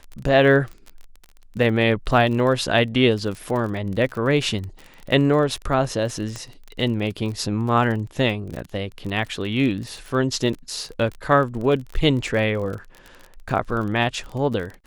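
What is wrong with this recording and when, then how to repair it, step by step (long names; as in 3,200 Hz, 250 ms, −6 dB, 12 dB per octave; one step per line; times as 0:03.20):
surface crackle 29 per second −29 dBFS
0:06.36: click −18 dBFS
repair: click removal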